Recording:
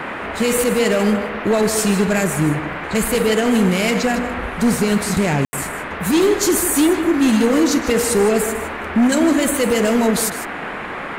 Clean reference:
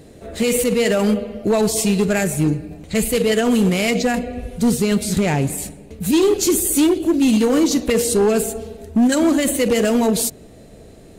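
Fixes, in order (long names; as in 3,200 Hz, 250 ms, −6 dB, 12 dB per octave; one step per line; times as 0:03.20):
ambience match 0:05.45–0:05.53
noise reduction from a noise print 13 dB
echo removal 154 ms −12 dB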